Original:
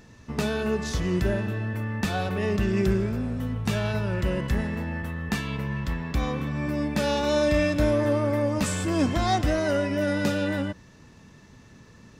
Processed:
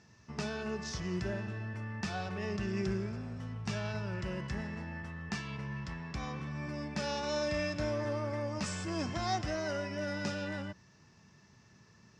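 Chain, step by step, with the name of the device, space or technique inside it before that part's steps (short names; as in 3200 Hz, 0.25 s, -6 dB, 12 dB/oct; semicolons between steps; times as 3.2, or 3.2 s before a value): car door speaker (speaker cabinet 90–7500 Hz, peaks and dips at 270 Hz -9 dB, 500 Hz -7 dB, 3600 Hz -4 dB, 5300 Hz +7 dB); gain -8.5 dB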